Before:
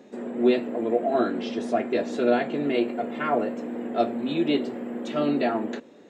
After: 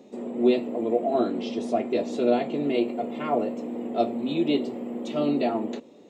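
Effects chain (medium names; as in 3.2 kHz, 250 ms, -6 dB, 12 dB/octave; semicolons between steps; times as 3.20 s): peaking EQ 1.6 kHz -14.5 dB 0.51 oct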